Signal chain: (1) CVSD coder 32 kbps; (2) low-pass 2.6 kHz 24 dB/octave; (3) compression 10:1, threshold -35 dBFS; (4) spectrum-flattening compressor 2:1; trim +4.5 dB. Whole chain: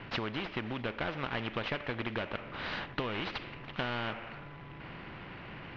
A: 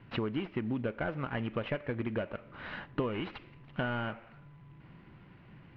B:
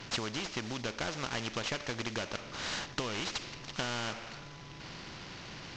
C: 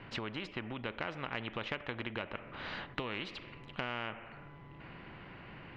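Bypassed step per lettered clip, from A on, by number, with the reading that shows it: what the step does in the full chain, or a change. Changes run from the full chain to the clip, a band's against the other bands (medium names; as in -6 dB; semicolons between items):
4, 4 kHz band -9.5 dB; 2, 4 kHz band +5.5 dB; 1, crest factor change +6.5 dB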